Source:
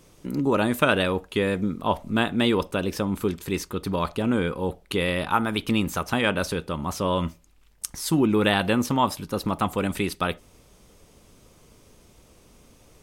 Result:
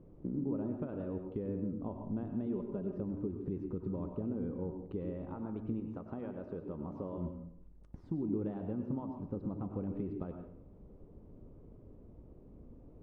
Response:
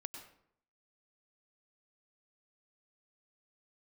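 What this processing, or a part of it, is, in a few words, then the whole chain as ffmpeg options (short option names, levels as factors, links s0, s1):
television next door: -filter_complex "[0:a]asettb=1/sr,asplit=3[s0][s1][s2];[s0]atrim=end=2.464[s3];[s1]atrim=start=2.46:end=3,asetpts=PTS-STARTPTS,afade=t=in:d=0.004:c=qsin,afade=t=out:st=0.536:d=0.004:c=qsin,aecho=1:1:5:0.67,atrim=end_sample=23814[s4];[s2]atrim=start=2.996[s5];[s3][s4]acrossfade=d=0.004:c1=hsin:c2=qsin[s6];[s6][s5]acrossfade=d=0.004:c1=qsin:c2=hsin,asettb=1/sr,asplit=3[s7][s8][s9];[s7]atrim=end=5.804[s10];[s8]atrim=start=5.8:end=7.18,asetpts=PTS-STARTPTS,afade=t=in:d=0.004:c=qsin,afade=t=out:st=1.376:d=0.004:c=qsin,lowshelf=f=200:g=-10.5[s11];[s9]atrim=start=7.176[s12];[s10][s11]acrossfade=d=0.004:c1=hsin:c2=qsin[s13];[s13][s12]acrossfade=d=0.004:c1=qsin:c2=hsin,acompressor=threshold=0.0178:ratio=5,lowpass=440[s14];[1:a]atrim=start_sample=2205[s15];[s14][s15]afir=irnorm=-1:irlink=0,volume=1.68"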